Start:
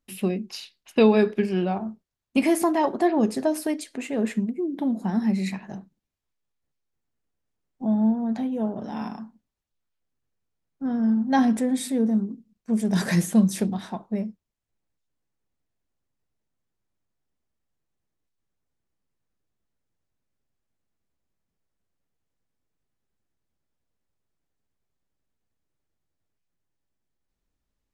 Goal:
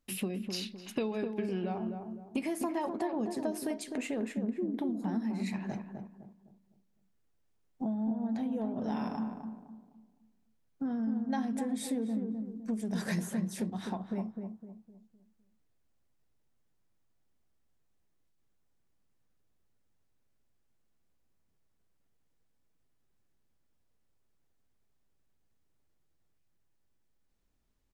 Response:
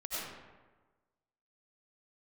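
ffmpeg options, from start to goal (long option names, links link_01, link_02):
-filter_complex "[0:a]acompressor=threshold=-34dB:ratio=6,asplit=2[link_01][link_02];[link_02]adelay=255,lowpass=frequency=980:poles=1,volume=-5dB,asplit=2[link_03][link_04];[link_04]adelay=255,lowpass=frequency=980:poles=1,volume=0.39,asplit=2[link_05][link_06];[link_06]adelay=255,lowpass=frequency=980:poles=1,volume=0.39,asplit=2[link_07][link_08];[link_08]adelay=255,lowpass=frequency=980:poles=1,volume=0.39,asplit=2[link_09][link_10];[link_10]adelay=255,lowpass=frequency=980:poles=1,volume=0.39[link_11];[link_01][link_03][link_05][link_07][link_09][link_11]amix=inputs=6:normalize=0,volume=1.5dB"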